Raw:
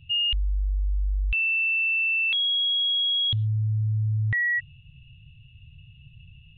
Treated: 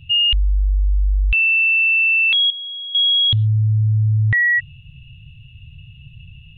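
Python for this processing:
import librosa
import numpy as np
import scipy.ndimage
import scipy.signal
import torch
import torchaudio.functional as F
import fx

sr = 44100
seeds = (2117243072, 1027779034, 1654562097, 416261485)

y = fx.lowpass(x, sr, hz=1500.0, slope=12, at=(2.5, 2.95))
y = F.gain(torch.from_numpy(y), 8.5).numpy()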